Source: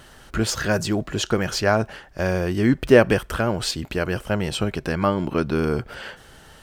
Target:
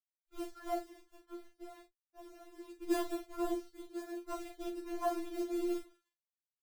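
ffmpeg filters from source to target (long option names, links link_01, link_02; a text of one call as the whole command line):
ffmpeg -i in.wav -filter_complex "[0:a]asettb=1/sr,asplit=3[link_01][link_02][link_03];[link_01]atrim=end=3.884[link_04];[link_02]atrim=start=3.88:end=4.28,asetpts=PTS-STARTPTS,afade=type=in:duration=0.004:curve=qsin,afade=type=out:start_time=0.396:duration=0.004:curve=qsin,highpass=frequency=210:width=0.5412,highpass=frequency=210:width=1.3066[link_05];[link_03]atrim=start=4.276[link_06];[link_04][link_05]acrossfade=duration=0.004:curve1=hsin:curve2=qsin[link_07];[link_07][link_06]acrossfade=duration=0.004:curve1=qsin:curve2=hsin,bandreject=frequency=60:width_type=h:width=6,bandreject=frequency=120:width_type=h:width=6,bandreject=frequency=180:width_type=h:width=6,bandreject=frequency=240:width_type=h:width=6,bandreject=frequency=300:width_type=h:width=6,bandreject=frequency=360:width_type=h:width=6,bandreject=frequency=420:width_type=h:width=6,bandreject=frequency=480:width_type=h:width=6,deesser=1,afwtdn=0.0501,asettb=1/sr,asplit=3[link_08][link_09][link_10];[link_08]atrim=end=0.854[link_11];[link_09]atrim=start=0.85:end=2.81,asetpts=PTS-STARTPTS,afade=type=in:duration=0.004:curve=qsin,afade=type=out:start_time=1.956:duration=0.004:curve=qsin,acompressor=threshold=-34dB:ratio=8[link_12];[link_10]atrim=start=2.806[link_13];[link_11][link_12]acrossfade=duration=0.004:curve1=hsin:curve2=qsin[link_14];[link_14][link_13]acrossfade=duration=0.004:curve1=qsin:curve2=hsin,acrusher=bits=4:mode=log:mix=0:aa=0.000001,aeval=exprs='sgn(val(0))*max(abs(val(0))-0.00631,0)':channel_layout=same,flanger=delay=7:depth=1.7:regen=55:speed=0.37:shape=sinusoidal,afftfilt=real='hypot(re,im)*cos(2*PI*random(0))':imag='hypot(re,im)*sin(2*PI*random(1))':win_size=512:overlap=0.75,aecho=1:1:40|54:0.398|0.141,afftfilt=real='re*4*eq(mod(b,16),0)':imag='im*4*eq(mod(b,16),0)':win_size=2048:overlap=0.75" out.wav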